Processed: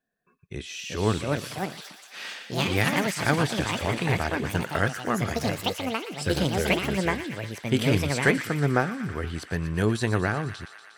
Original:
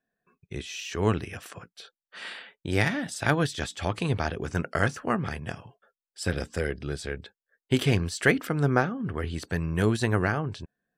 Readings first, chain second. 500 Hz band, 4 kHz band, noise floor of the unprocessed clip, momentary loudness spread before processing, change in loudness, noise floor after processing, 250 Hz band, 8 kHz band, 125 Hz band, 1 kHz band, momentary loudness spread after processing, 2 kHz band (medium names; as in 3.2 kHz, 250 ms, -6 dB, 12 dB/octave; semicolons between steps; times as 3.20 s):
+2.0 dB, +5.0 dB, under -85 dBFS, 15 LU, +1.5 dB, -52 dBFS, +2.0 dB, +3.5 dB, +1.0 dB, +3.0 dB, 11 LU, +2.0 dB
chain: ever faster or slower copies 513 ms, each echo +5 st, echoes 2; feedback echo behind a high-pass 119 ms, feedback 76%, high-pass 1.6 kHz, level -10 dB